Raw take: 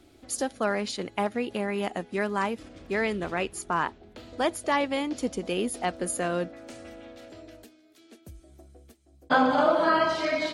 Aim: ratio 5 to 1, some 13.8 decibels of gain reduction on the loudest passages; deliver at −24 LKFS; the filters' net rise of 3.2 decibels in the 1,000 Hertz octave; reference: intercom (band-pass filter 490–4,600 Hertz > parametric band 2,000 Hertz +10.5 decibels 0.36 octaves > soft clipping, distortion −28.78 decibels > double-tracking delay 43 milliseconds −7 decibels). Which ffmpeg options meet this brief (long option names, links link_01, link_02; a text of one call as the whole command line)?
ffmpeg -i in.wav -filter_complex "[0:a]equalizer=frequency=1000:width_type=o:gain=4,acompressor=threshold=-31dB:ratio=5,highpass=490,lowpass=4600,equalizer=frequency=2000:width_type=o:width=0.36:gain=10.5,asoftclip=threshold=-17dB,asplit=2[link_01][link_02];[link_02]adelay=43,volume=-7dB[link_03];[link_01][link_03]amix=inputs=2:normalize=0,volume=11dB" out.wav